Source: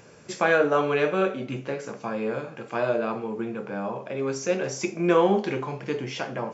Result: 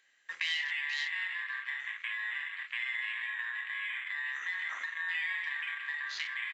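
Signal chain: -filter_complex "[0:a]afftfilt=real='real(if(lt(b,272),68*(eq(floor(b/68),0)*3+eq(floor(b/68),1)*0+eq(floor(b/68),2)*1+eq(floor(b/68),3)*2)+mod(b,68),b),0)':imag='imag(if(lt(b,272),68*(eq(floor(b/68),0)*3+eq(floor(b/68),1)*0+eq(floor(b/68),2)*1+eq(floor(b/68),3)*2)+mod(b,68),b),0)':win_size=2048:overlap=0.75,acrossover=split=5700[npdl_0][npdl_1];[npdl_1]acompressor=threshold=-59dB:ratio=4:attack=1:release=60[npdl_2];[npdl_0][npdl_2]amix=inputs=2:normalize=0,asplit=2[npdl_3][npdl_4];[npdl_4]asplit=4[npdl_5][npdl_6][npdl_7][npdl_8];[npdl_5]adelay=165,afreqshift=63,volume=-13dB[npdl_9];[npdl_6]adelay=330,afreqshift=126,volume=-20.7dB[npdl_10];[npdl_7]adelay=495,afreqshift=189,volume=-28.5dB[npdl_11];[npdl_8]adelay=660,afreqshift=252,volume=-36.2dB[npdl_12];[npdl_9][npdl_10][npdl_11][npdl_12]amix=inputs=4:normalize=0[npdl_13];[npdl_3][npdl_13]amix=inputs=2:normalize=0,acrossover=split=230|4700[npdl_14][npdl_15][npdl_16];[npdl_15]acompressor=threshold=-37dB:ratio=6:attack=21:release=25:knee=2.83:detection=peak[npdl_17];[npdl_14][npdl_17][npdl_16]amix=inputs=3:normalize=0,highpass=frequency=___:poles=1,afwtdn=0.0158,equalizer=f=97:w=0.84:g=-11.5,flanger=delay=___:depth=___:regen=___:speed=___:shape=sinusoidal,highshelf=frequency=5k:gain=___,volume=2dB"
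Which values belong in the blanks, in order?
75, 9.6, 6, -78, 1.8, 3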